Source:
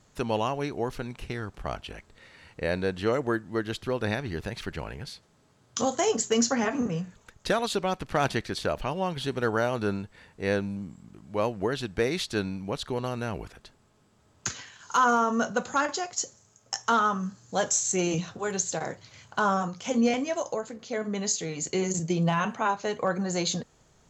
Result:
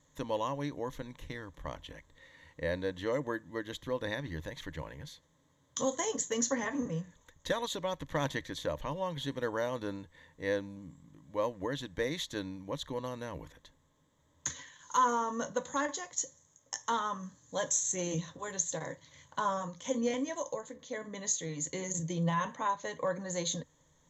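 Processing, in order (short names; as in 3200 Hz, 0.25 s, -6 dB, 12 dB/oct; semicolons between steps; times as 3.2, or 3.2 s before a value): ripple EQ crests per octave 1.1, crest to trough 12 dB; gain -8.5 dB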